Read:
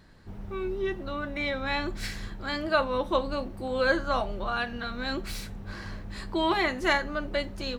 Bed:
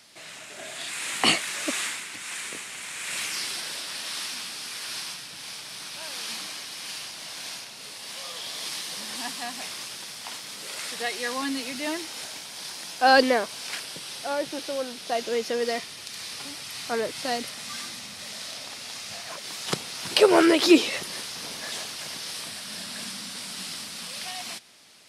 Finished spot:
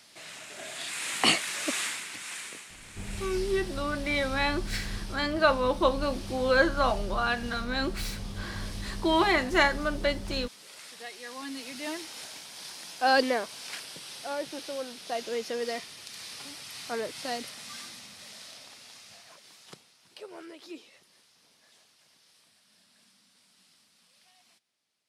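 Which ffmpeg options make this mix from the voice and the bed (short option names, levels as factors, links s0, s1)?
-filter_complex "[0:a]adelay=2700,volume=1.26[s0];[1:a]volume=1.78,afade=t=out:st=2.14:d=0.65:silence=0.298538,afade=t=in:st=11.26:d=0.63:silence=0.446684,afade=t=out:st=17.4:d=2.58:silence=0.0794328[s1];[s0][s1]amix=inputs=2:normalize=0"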